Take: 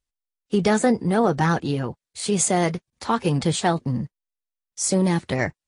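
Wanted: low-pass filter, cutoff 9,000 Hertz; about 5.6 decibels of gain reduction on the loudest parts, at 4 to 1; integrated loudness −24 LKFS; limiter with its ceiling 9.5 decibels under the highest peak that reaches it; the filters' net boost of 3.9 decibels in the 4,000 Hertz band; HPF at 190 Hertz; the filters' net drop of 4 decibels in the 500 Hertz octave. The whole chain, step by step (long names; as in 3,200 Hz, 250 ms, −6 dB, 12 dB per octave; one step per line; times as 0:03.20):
high-pass filter 190 Hz
low-pass filter 9,000 Hz
parametric band 500 Hz −5 dB
parametric band 4,000 Hz +5 dB
downward compressor 4 to 1, threshold −23 dBFS
level +7.5 dB
brickwall limiter −13 dBFS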